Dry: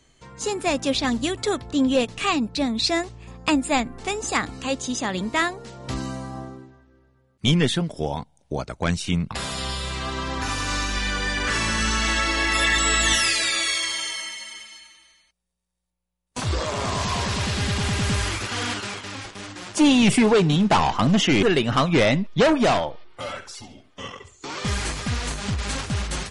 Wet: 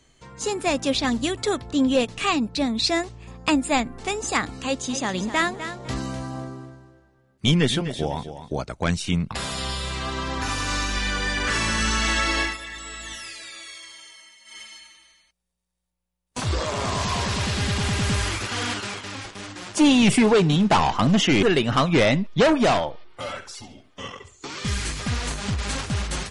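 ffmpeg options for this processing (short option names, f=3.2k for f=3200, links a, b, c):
-filter_complex "[0:a]asettb=1/sr,asplit=3[a][b][c];[a]atrim=end=4.624[d];[b]atrim=start=4.62:end=8.54,asetpts=PTS-STARTPTS,afade=t=in:d=0.004:c=qsin,afade=t=out:st=3.916:d=0.004:c=qsin,aecho=1:1:252|504|756:0.282|0.0761|0.0205,atrim=end_sample=172872[e];[c]atrim=start=8.536[f];[d][e]acrossfade=d=0.004:c1=hsin:c2=qsin[g];[g][f]acrossfade=d=0.004:c1=qsin:c2=hsin,asettb=1/sr,asplit=3[h][i][j];[h]atrim=end=24.474[k];[i]atrim=start=24.47:end=25,asetpts=PTS-STARTPTS,afade=t=in:d=0.004:c=qsin,afade=t=out:st=0.526:d=0.004:c=qsin,equalizer=f=710:t=o:w=1.6:g=-8[l];[j]atrim=start=24.996[m];[k][l]acrossfade=d=0.004:c1=hsin:c2=qsin[n];[n][m]acrossfade=d=0.004:c1=qsin:c2=hsin,asplit=3[o][p][q];[o]atrim=end=12.57,asetpts=PTS-STARTPTS,afade=t=out:st=12.4:d=0.17:silence=0.149624[r];[p]atrim=start=12.57:end=14.44,asetpts=PTS-STARTPTS,volume=-16.5dB[s];[q]atrim=start=14.44,asetpts=PTS-STARTPTS,afade=t=in:d=0.17:silence=0.149624[t];[r][s][t]concat=n=3:v=0:a=1"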